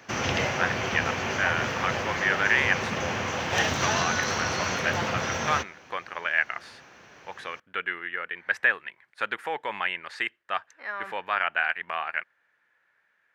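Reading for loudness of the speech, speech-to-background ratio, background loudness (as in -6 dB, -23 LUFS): -29.0 LUFS, -1.0 dB, -28.0 LUFS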